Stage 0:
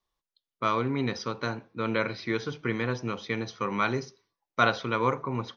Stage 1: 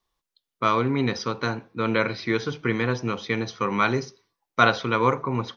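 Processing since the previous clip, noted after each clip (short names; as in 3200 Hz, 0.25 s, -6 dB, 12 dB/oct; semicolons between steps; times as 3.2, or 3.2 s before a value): notch 590 Hz, Q 18; gain +5 dB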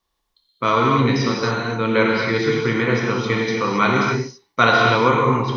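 non-linear reverb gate 0.3 s flat, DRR -2.5 dB; gain +2 dB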